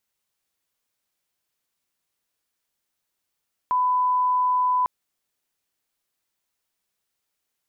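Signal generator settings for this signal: line-up tone -18 dBFS 1.15 s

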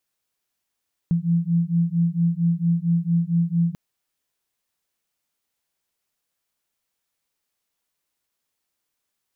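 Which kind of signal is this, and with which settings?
beating tones 167 Hz, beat 4.4 Hz, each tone -21 dBFS 2.64 s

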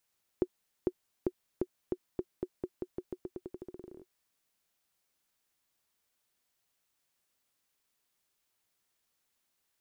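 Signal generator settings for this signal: bouncing ball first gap 0.45 s, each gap 0.88, 364 Hz, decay 54 ms -16 dBFS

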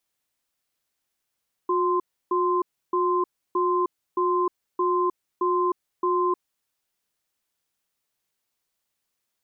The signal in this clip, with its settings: cadence 360 Hz, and 1040 Hz, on 0.31 s, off 0.31 s, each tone -22.5 dBFS 4.90 s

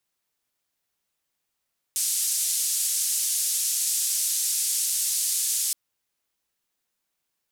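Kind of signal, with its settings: noise band 6800–9800 Hz, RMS -25.5 dBFS 3.77 s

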